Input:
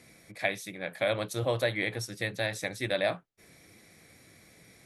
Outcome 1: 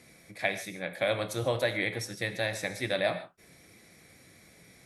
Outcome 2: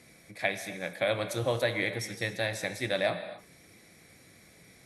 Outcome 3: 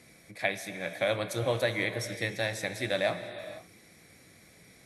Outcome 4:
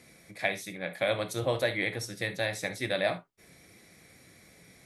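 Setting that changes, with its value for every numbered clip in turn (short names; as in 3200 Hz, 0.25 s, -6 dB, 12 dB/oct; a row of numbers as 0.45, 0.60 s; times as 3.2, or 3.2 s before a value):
non-linear reverb, gate: 170, 300, 530, 90 ms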